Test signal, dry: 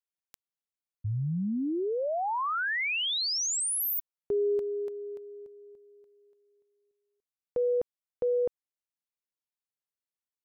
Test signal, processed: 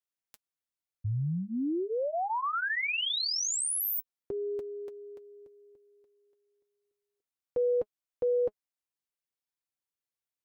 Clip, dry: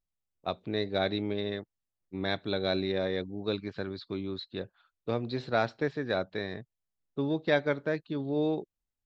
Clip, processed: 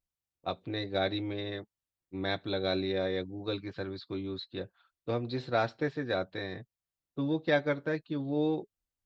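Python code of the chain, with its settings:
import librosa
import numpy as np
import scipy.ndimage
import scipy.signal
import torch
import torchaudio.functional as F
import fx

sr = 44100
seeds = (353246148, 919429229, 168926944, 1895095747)

y = fx.notch_comb(x, sr, f0_hz=210.0)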